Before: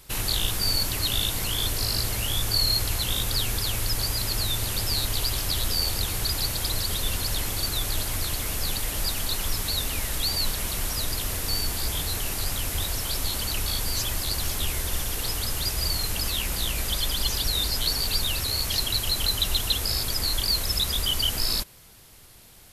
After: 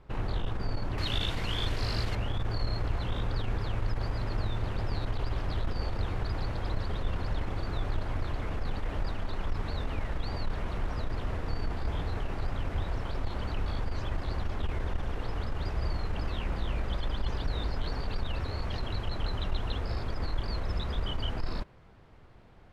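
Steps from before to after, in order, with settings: low-pass 1.2 kHz 12 dB/octave, from 0.98 s 2.6 kHz, from 2.15 s 1.4 kHz; transformer saturation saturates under 52 Hz

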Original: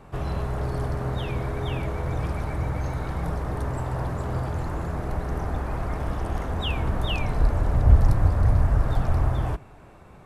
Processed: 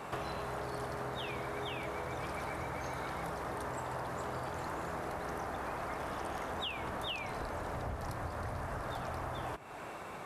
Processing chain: high-pass 680 Hz 6 dB/octave; compression 12:1, threshold -46 dBFS, peak gain reduction 19 dB; trim +10 dB

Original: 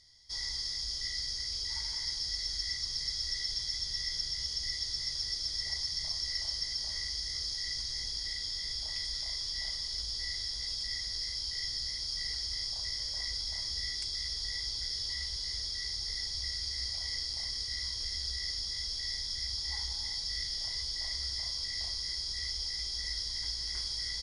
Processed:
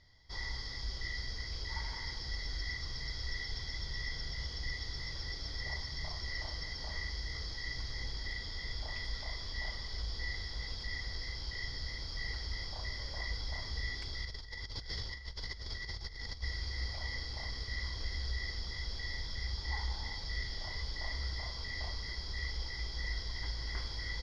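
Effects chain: low-pass 1.9 kHz 12 dB/octave; 14.25–16.43 s: compressor with a negative ratio -49 dBFS, ratio -0.5; trim +7.5 dB

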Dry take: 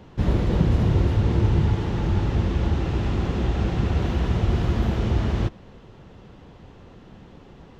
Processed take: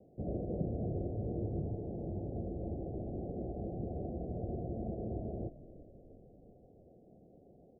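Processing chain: steep low-pass 720 Hz 96 dB/octave; tilt EQ +4 dB/octave; frequency-shifting echo 348 ms, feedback 60%, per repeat -43 Hz, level -16 dB; trim -5.5 dB

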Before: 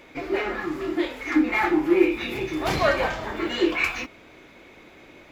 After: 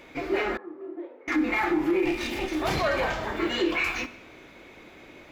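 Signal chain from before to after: 2.05–2.62 s: comb filter that takes the minimum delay 3.3 ms; on a send at -16 dB: reverberation RT60 1.0 s, pre-delay 18 ms; on the sum: peak limiter -16.5 dBFS, peak gain reduction 10 dB; 0.57–1.28 s: ladder band-pass 510 Hz, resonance 35%

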